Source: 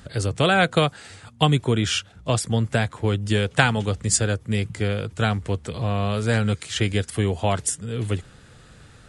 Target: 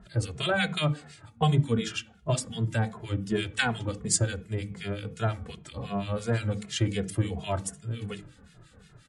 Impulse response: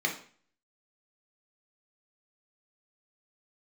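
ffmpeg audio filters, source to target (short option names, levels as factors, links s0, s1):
-filter_complex "[0:a]acrossover=split=1500[s0][s1];[s0]aeval=exprs='val(0)*(1-1/2+1/2*cos(2*PI*5.7*n/s))':c=same[s2];[s1]aeval=exprs='val(0)*(1-1/2-1/2*cos(2*PI*5.7*n/s))':c=same[s3];[s2][s3]amix=inputs=2:normalize=0,asplit=2[s4][s5];[s5]bass=f=250:g=12,treble=f=4000:g=-2[s6];[1:a]atrim=start_sample=2205,highshelf=f=2100:g=-12,adelay=23[s7];[s6][s7]afir=irnorm=-1:irlink=0,volume=0.133[s8];[s4][s8]amix=inputs=2:normalize=0,asplit=2[s9][s10];[s10]adelay=2.4,afreqshift=-2.7[s11];[s9][s11]amix=inputs=2:normalize=1"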